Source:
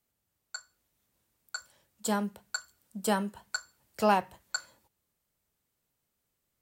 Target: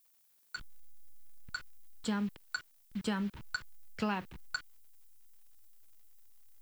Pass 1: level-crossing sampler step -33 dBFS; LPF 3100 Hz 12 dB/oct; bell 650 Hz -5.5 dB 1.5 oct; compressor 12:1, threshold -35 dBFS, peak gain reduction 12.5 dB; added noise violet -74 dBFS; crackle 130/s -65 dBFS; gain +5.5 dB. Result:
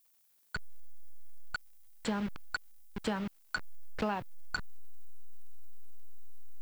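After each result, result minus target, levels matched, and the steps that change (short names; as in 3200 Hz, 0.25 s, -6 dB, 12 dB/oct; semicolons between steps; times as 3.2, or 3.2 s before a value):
level-crossing sampler: distortion +13 dB; 500 Hz band +3.5 dB
change: level-crossing sampler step -43.5 dBFS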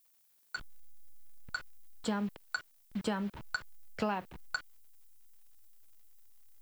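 500 Hz band +3.5 dB
change: bell 650 Hz -15.5 dB 1.5 oct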